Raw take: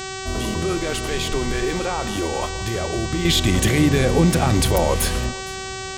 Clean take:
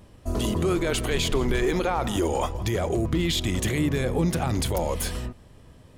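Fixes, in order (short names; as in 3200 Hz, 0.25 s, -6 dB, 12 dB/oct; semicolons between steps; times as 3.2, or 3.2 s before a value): de-hum 381.4 Hz, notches 22; noise print and reduce 19 dB; inverse comb 0.464 s -23 dB; gain 0 dB, from 3.25 s -7.5 dB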